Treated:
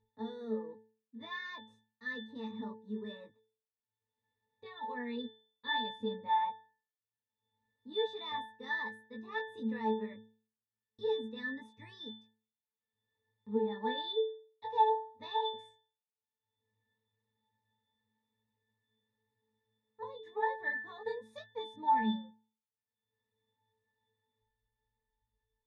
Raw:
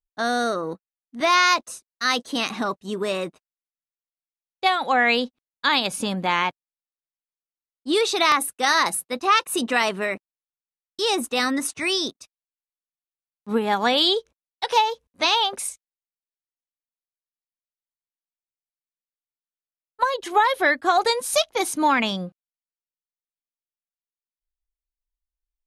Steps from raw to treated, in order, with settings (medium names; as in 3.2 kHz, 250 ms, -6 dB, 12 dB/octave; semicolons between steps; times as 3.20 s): upward compressor, threshold -32 dBFS; pitch-class resonator A, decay 0.44 s; chorus 0.1 Hz, delay 18.5 ms, depth 2.1 ms; trim +6 dB